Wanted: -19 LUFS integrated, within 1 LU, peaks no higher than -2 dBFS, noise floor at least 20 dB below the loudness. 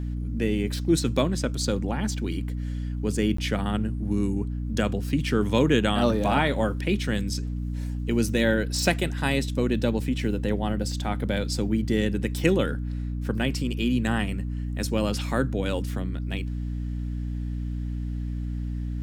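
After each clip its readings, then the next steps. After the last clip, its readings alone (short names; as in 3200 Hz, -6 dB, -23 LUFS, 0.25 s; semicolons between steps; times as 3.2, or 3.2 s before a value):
dropouts 1; longest dropout 14 ms; hum 60 Hz; harmonics up to 300 Hz; hum level -27 dBFS; loudness -26.5 LUFS; peak -5.5 dBFS; loudness target -19.0 LUFS
-> interpolate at 3.37, 14 ms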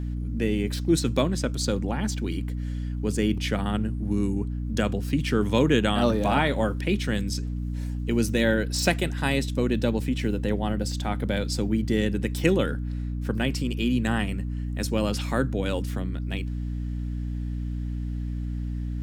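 dropouts 0; hum 60 Hz; harmonics up to 300 Hz; hum level -27 dBFS
-> notches 60/120/180/240/300 Hz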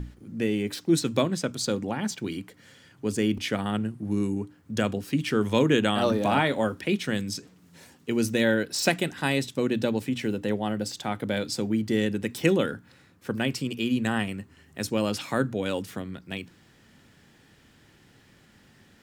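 hum none; loudness -27.5 LUFS; peak -6.0 dBFS; loudness target -19.0 LUFS
-> gain +8.5 dB; limiter -2 dBFS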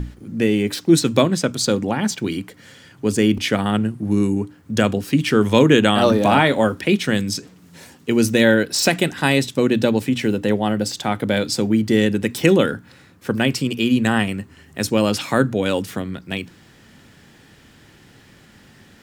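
loudness -19.0 LUFS; peak -2.0 dBFS; noise floor -49 dBFS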